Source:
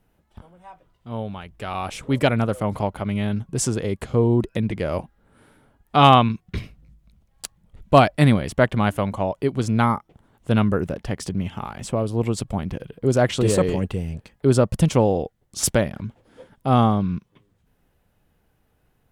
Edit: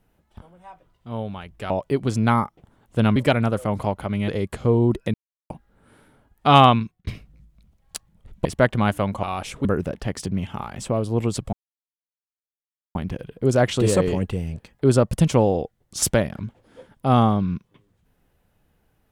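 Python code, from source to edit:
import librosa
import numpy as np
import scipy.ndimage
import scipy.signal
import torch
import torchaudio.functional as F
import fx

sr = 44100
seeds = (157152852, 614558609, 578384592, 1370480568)

y = fx.edit(x, sr, fx.swap(start_s=1.7, length_s=0.42, other_s=9.22, other_length_s=1.46),
    fx.cut(start_s=3.24, length_s=0.53),
    fx.silence(start_s=4.63, length_s=0.36),
    fx.fade_out_span(start_s=6.24, length_s=0.32),
    fx.cut(start_s=7.94, length_s=0.5),
    fx.insert_silence(at_s=12.56, length_s=1.42), tone=tone)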